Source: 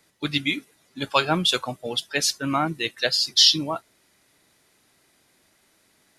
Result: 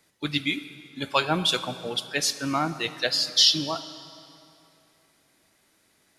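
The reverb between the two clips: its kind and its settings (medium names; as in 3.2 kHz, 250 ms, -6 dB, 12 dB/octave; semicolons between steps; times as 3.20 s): plate-style reverb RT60 2.8 s, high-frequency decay 0.75×, DRR 12 dB; trim -2.5 dB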